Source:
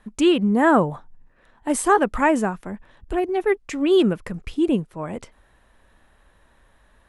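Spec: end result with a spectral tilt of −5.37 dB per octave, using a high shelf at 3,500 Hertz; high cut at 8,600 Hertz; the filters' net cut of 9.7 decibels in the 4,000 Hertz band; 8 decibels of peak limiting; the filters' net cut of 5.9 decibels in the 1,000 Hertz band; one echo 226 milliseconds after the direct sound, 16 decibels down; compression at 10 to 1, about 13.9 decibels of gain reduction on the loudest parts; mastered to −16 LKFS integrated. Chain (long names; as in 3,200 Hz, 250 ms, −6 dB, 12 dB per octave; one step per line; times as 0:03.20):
low-pass filter 8,600 Hz
parametric band 1,000 Hz −6.5 dB
high-shelf EQ 3,500 Hz −8 dB
parametric band 4,000 Hz −9 dB
downward compressor 10 to 1, threshold −28 dBFS
brickwall limiter −27 dBFS
single-tap delay 226 ms −16 dB
level +20 dB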